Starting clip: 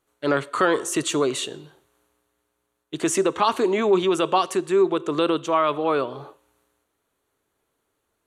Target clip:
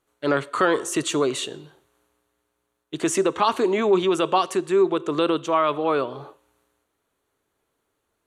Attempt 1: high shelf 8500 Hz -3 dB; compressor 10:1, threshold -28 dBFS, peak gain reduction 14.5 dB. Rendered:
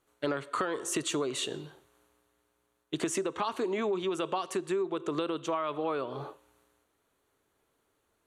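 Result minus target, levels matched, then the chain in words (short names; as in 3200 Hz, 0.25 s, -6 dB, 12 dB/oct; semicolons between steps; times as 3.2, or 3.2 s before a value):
compressor: peak gain reduction +14.5 dB
high shelf 8500 Hz -3 dB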